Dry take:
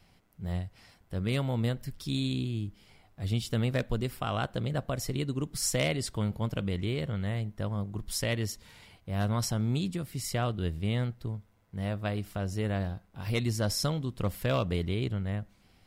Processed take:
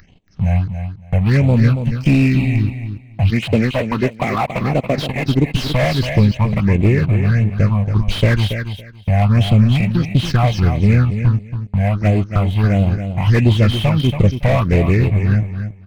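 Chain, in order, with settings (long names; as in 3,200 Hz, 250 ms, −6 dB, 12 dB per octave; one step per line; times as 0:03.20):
hearing-aid frequency compression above 1,100 Hz 1.5 to 1
0:03.30–0:05.28: high-pass filter 210 Hz 12 dB per octave
noise gate −49 dBFS, range −20 dB
0:06.55–0:06.99: Butterworth low-pass 3,000 Hz
in parallel at −1 dB: output level in coarse steps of 21 dB
on the sum: transient designer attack +6 dB, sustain −11 dB
leveller curve on the samples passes 3
all-pass phaser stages 6, 1.5 Hz, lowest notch 340–1,600 Hz
upward compression, threshold −32 dBFS
on a send: repeating echo 280 ms, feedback 18%, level −9 dB
on the sum: slew-rate limiting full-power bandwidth 100 Hz
level +6 dB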